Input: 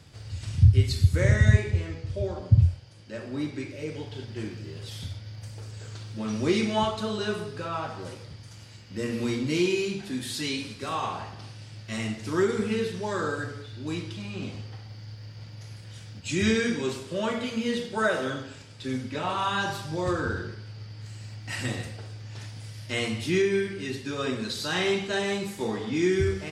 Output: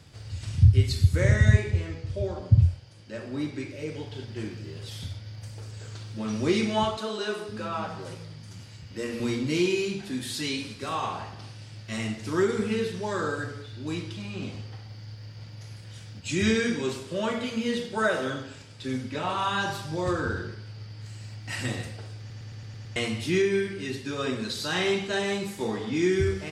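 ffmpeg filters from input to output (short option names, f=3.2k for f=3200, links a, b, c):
-filter_complex "[0:a]asettb=1/sr,asplit=3[a][b][c];[a]atrim=end=6.974[d];[b]atrim=start=6.97:end=9.2,asetpts=PTS-STARTPTS,afade=t=in:d=0.004:c=qsin,afade=t=out:st=2.226:d=0.004:c=qsin,acrossover=split=210[e][f];[e]adelay=510[g];[g][f]amix=inputs=2:normalize=0,atrim=end_sample=98343[h];[c]atrim=start=9.196[i];[d][h]acrossfade=d=0.004:c1=hsin:c2=qsin[j];[j][i]acrossfade=d=0.004:c1=qsin:c2=hsin,asplit=8[k][l][m][n][o][p][q][r];[k]atrim=end=22.302[s];[l]atrim=start=22.188:end=22.302[t];[m]atrim=start=22.188:end=22.302[u];[n]atrim=start=22.188:end=22.302[v];[o]atrim=start=22.188:end=22.302[w];[p]atrim=start=22.188:end=22.302[x];[q]atrim=start=22.188:end=22.302[y];[r]atrim=start=22.958[z];[s][t]acrossfade=d=0.004:c1=hsin:c2=hsin[aa];[aa][u]acrossfade=d=0.004:c1=hsin:c2=hsin[ab];[ab][v]acrossfade=d=0.004:c1=hsin:c2=hsin[ac];[ac][w]acrossfade=d=0.004:c1=hsin:c2=hsin[ad];[ad][x]acrossfade=d=0.004:c1=hsin:c2=hsin[ae];[ae][y]acrossfade=d=0.004:c1=hsin:c2=hsin[af];[af][z]acrossfade=d=0.004:c1=hsin:c2=hsin"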